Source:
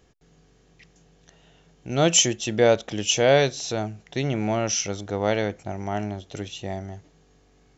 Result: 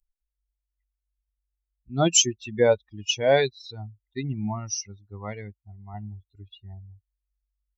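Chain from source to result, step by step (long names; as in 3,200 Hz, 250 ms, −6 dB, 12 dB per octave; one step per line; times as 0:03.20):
spectral dynamics exaggerated over time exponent 3
0:04.79–0:05.94: notch comb filter 870 Hz
level +2.5 dB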